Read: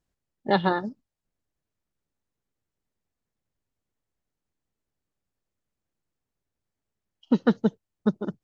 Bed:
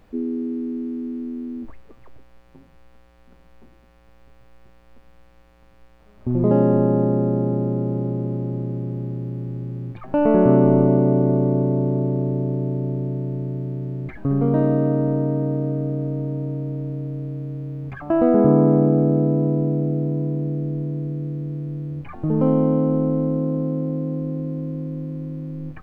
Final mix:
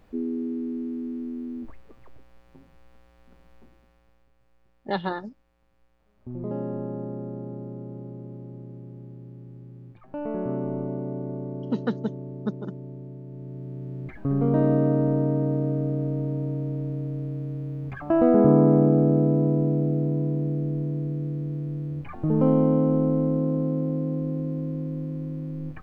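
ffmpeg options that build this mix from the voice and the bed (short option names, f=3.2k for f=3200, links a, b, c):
-filter_complex "[0:a]adelay=4400,volume=-5.5dB[a];[1:a]volume=9dB,afade=t=out:st=3.55:d=0.75:silence=0.281838,afade=t=in:st=13.26:d=1.46:silence=0.237137[b];[a][b]amix=inputs=2:normalize=0"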